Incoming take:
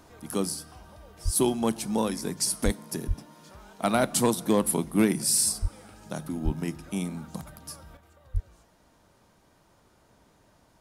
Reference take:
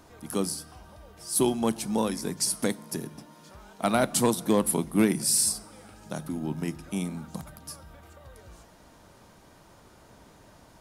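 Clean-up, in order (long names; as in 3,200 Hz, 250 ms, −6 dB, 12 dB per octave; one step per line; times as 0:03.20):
high-pass at the plosives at 0:01.24/0:02.64/0:03.07/0:05.61/0:06.44/0:08.33
level 0 dB, from 0:07.97 +7.5 dB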